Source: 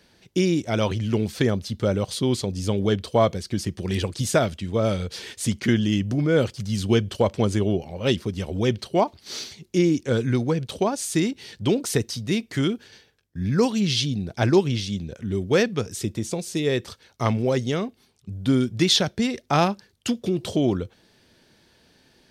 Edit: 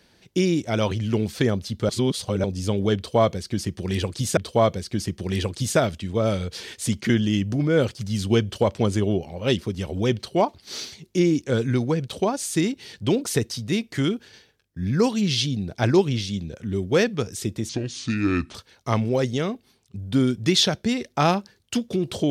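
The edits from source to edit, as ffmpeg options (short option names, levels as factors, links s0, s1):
-filter_complex "[0:a]asplit=6[s0][s1][s2][s3][s4][s5];[s0]atrim=end=1.892[s6];[s1]atrim=start=1.888:end=2.442,asetpts=PTS-STARTPTS,areverse[s7];[s2]atrim=start=2.438:end=4.372[s8];[s3]atrim=start=2.958:end=16.284[s9];[s4]atrim=start=16.28:end=16.88,asetpts=PTS-STARTPTS,asetrate=30870,aresample=44100[s10];[s5]atrim=start=16.876[s11];[s6][s7]acrossfade=d=0.004:c1=hsin:c2=hsin[s12];[s12][s8]acrossfade=d=0.004:c1=hsin:c2=hsin[s13];[s13][s9]acrossfade=d=0.004:c1=hsin:c2=hsin[s14];[s14][s10]acrossfade=d=0.004:c1=hsin:c2=hsin[s15];[s15][s11]acrossfade=d=0.004:c1=hsin:c2=hsin"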